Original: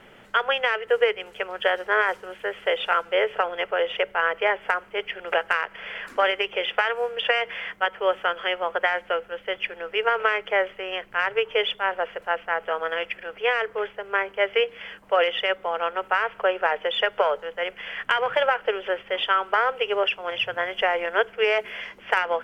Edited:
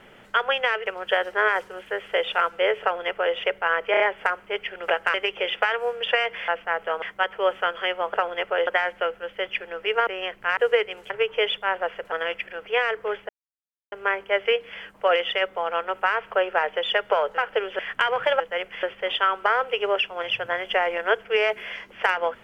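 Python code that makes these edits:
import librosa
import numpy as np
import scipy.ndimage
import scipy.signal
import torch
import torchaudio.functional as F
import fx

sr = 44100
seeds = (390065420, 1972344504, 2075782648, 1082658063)

y = fx.edit(x, sr, fx.move(start_s=0.86, length_s=0.53, to_s=11.27),
    fx.duplicate(start_s=3.35, length_s=0.53, to_s=8.76),
    fx.stutter(start_s=4.44, slice_s=0.03, count=4),
    fx.cut(start_s=5.58, length_s=0.72),
    fx.cut(start_s=10.16, length_s=0.61),
    fx.move(start_s=12.29, length_s=0.54, to_s=7.64),
    fx.insert_silence(at_s=14.0, length_s=0.63),
    fx.swap(start_s=17.46, length_s=0.43, other_s=18.5, other_length_s=0.41), tone=tone)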